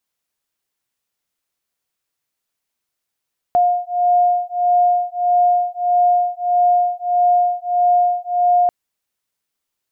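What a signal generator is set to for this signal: beating tones 710 Hz, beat 1.6 Hz, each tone -16 dBFS 5.14 s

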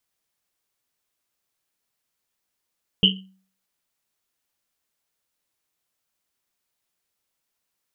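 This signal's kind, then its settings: Risset drum, pitch 190 Hz, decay 0.47 s, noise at 3000 Hz, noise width 330 Hz, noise 60%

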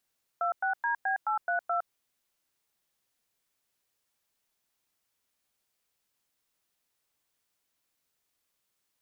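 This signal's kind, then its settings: DTMF "26DB832", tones 0.111 s, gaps 0.103 s, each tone -28.5 dBFS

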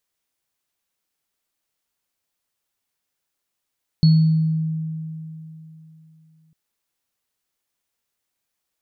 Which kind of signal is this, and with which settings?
sine partials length 2.50 s, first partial 159 Hz, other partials 4370 Hz, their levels -15 dB, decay 3.23 s, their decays 0.66 s, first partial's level -9 dB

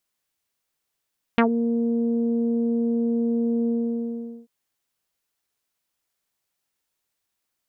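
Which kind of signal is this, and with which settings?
synth note saw A#3 24 dB/oct, low-pass 410 Hz, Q 1.9, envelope 3 oct, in 0.10 s, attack 1.1 ms, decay 0.10 s, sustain -8.5 dB, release 0.79 s, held 2.30 s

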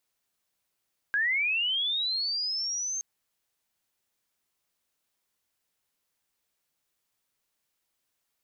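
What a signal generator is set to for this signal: chirp linear 1600 Hz -> 6400 Hz -23 dBFS -> -29.5 dBFS 1.87 s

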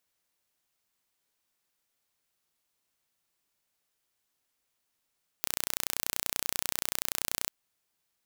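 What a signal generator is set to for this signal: pulse train 30.4/s, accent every 0, -2.5 dBFS 2.05 s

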